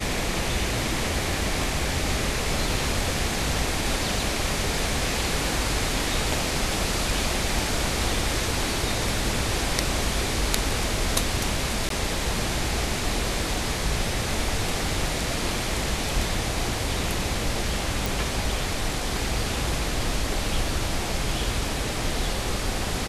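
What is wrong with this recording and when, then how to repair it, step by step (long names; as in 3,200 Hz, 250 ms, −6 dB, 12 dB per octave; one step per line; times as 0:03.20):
0:11.89–0:11.90: drop-out 13 ms
0:18.06: click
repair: click removal
repair the gap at 0:11.89, 13 ms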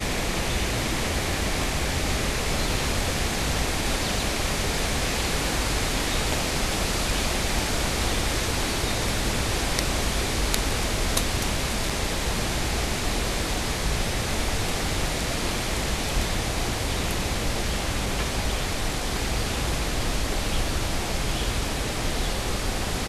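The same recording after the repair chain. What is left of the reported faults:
none of them is left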